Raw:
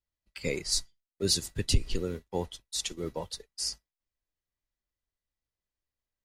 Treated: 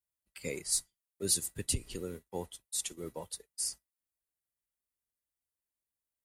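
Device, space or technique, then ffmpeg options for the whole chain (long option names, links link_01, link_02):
budget condenser microphone: -af "highpass=frequency=97:poles=1,highshelf=frequency=7100:width_type=q:width=1.5:gain=9.5,volume=-6dB"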